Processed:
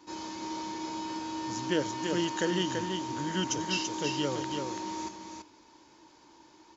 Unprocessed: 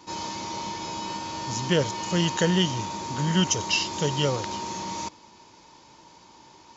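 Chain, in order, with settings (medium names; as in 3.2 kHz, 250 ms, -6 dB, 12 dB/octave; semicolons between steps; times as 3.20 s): graphic EQ with 31 bands 100 Hz -5 dB, 160 Hz -8 dB, 315 Hz +11 dB, 1.6 kHz +5 dB; on a send: delay 334 ms -5 dB; on the sum: trim -8.5 dB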